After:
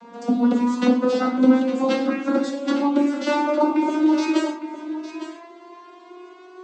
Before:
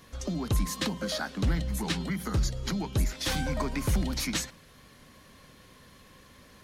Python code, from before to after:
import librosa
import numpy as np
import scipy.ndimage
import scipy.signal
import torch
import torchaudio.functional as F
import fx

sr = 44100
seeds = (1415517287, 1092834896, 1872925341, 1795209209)

p1 = fx.vocoder_glide(x, sr, note=58, semitones=8)
p2 = scipy.signal.sosfilt(scipy.signal.butter(2, 280.0, 'highpass', fs=sr, output='sos'), p1)
p3 = fx.high_shelf(p2, sr, hz=2400.0, db=-12.0)
p4 = fx.notch(p3, sr, hz=1800.0, q=9.9)
p5 = fx.rider(p4, sr, range_db=10, speed_s=0.5)
p6 = p4 + (p5 * 10.0 ** (0.0 / 20.0))
p7 = fx.quant_float(p6, sr, bits=8)
p8 = p7 + fx.echo_single(p7, sr, ms=858, db=-12.0, dry=0)
p9 = fx.rev_gated(p8, sr, seeds[0], gate_ms=160, shape='falling', drr_db=0.0)
y = p9 * 10.0 ** (8.5 / 20.0)